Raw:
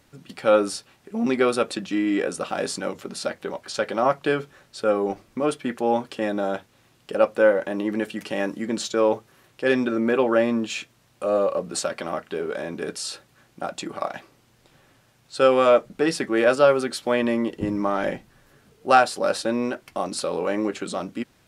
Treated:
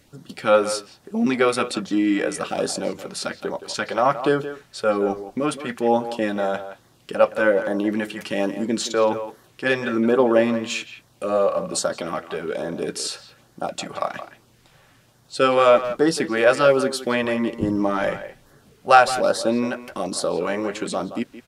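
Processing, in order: LFO notch sine 1.2 Hz 260–2600 Hz; speakerphone echo 0.17 s, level -11 dB; gain +3.5 dB

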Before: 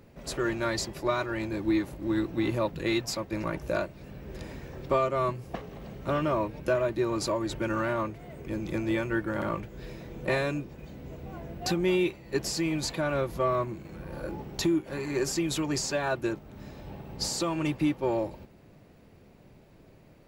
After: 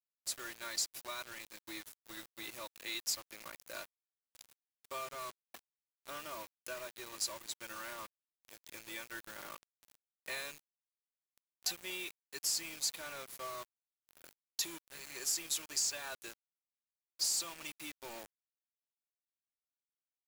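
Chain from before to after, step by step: differentiator; bit-crush 8-bit; gain +1 dB

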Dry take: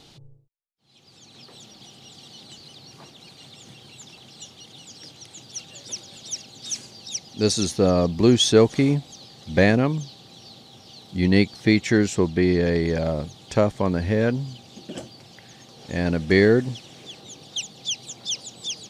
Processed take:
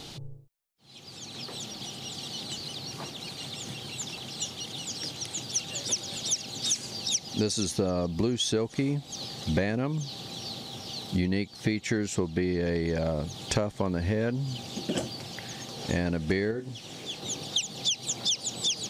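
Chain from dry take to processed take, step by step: high shelf 8700 Hz +4.5 dB; compressor 16:1, threshold -31 dBFS, peak gain reduction 21.5 dB; 16.51–17.22 resonator 54 Hz, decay 0.19 s, harmonics all, mix 80%; gain +7 dB

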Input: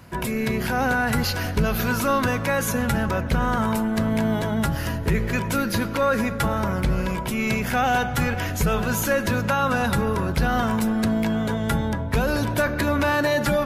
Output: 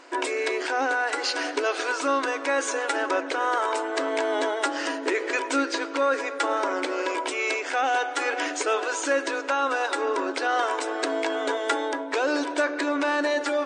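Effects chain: FFT band-pass 260–9100 Hz; vocal rider within 3 dB 0.5 s

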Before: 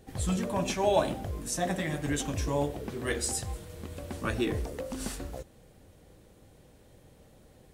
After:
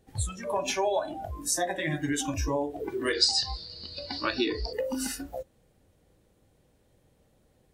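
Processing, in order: compressor 20:1, threshold -31 dBFS, peak gain reduction 13 dB; 3.13–4.73 synth low-pass 4600 Hz, resonance Q 8; spectral noise reduction 17 dB; gain +8.5 dB

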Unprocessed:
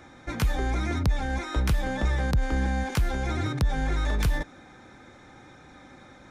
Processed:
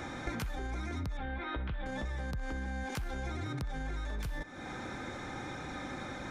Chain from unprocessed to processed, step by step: 1.17–1.86 Chebyshev low-pass 3500 Hz, order 4; limiter -24 dBFS, peak gain reduction 7.5 dB; compressor 12:1, threshold -43 dBFS, peak gain reduction 17 dB; on a send: narrowing echo 63 ms, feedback 73%, band-pass 1400 Hz, level -12.5 dB; on the sum: gain +8.5 dB

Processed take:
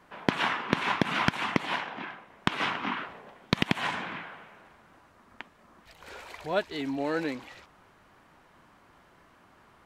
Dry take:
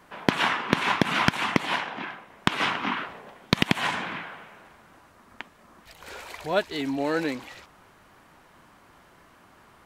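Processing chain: high shelf 6600 Hz -7 dB; gain -3.5 dB

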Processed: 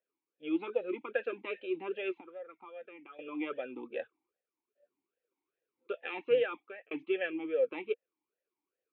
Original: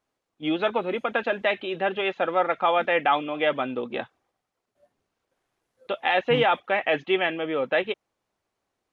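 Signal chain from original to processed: 2.11–3.19 compressor 5:1, threshold -36 dBFS, peak gain reduction 17.5 dB; 6.32–6.91 fade out; vowel sweep e-u 2.5 Hz

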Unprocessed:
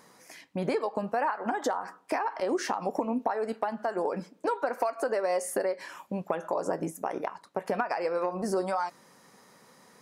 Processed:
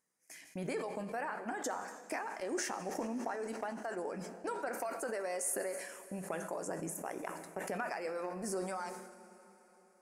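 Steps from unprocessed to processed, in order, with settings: gate -52 dBFS, range -21 dB; graphic EQ 125/250/500/1000/4000/8000 Hz -7/-5/-6/-10/-10/+6 dB; plate-style reverb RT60 4.1 s, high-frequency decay 1×, DRR 12 dB; sustainer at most 51 dB/s; gain -2 dB

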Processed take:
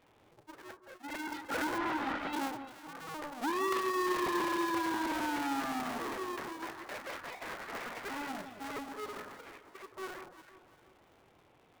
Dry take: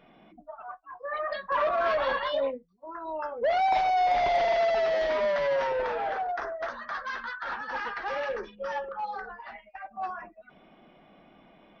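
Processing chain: cycle switcher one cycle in 2, inverted; 1.78–2.33 LPF 3300 Hz 12 dB/oct; echo with dull and thin repeats by turns 0.172 s, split 1300 Hz, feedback 61%, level -9 dB; gain -8.5 dB

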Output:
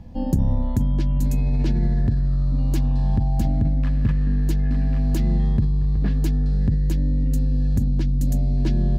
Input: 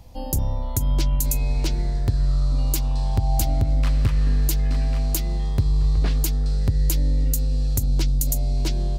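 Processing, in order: EQ curve 150 Hz 0 dB, 2900 Hz -8 dB, 13000 Hz -21 dB; in parallel at +1 dB: negative-ratio compressor -22 dBFS, ratio -0.5; on the sum: small resonant body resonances 210/1700 Hz, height 12 dB, ringing for 30 ms; gain -5 dB

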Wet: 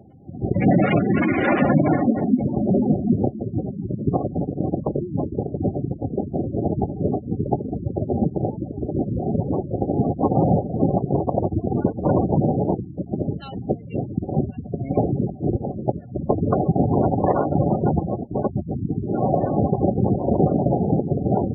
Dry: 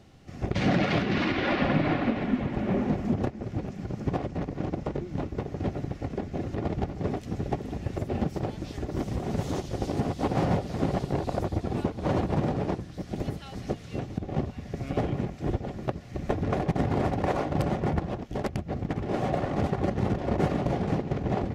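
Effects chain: 18.69–19.18 bell 660 Hz -7.5 dB 1.3 oct; spectral gate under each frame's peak -15 dB strong; HPF 97 Hz 12 dB/oct; gain +8.5 dB

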